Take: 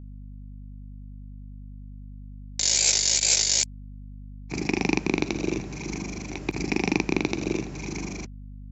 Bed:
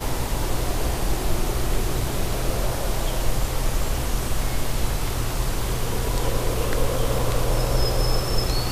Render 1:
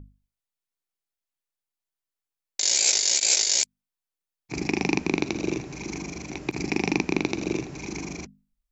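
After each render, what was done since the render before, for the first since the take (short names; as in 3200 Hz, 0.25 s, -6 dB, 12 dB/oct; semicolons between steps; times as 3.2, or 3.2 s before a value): notches 50/100/150/200/250 Hz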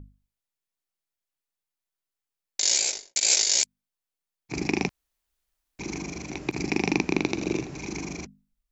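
2.73–3.16 studio fade out; 4.89–5.79 room tone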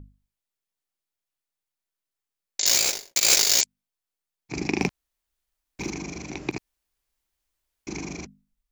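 2.66–3.61 half-waves squared off; 4.79–5.9 sample leveller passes 1; 6.58–7.87 room tone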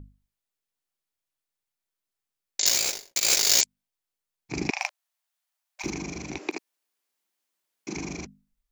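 2.69–3.44 gain -3.5 dB; 4.7–5.84 brick-wall FIR high-pass 580 Hz; 6.37–7.95 HPF 330 Hz -> 130 Hz 24 dB/oct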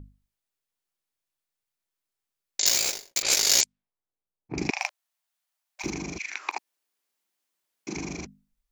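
3.22–4.58 low-pass opened by the level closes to 760 Hz, open at -18 dBFS; 6.17–6.57 resonant high-pass 2600 Hz -> 830 Hz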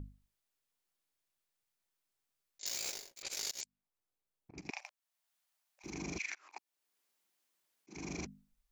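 auto swell 0.516 s; compressor 12:1, threshold -36 dBFS, peak gain reduction 11 dB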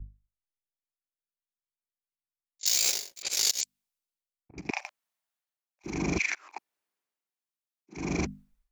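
AGC gain up to 8.5 dB; three-band expander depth 70%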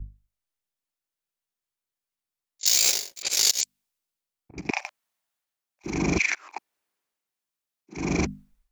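gain +5 dB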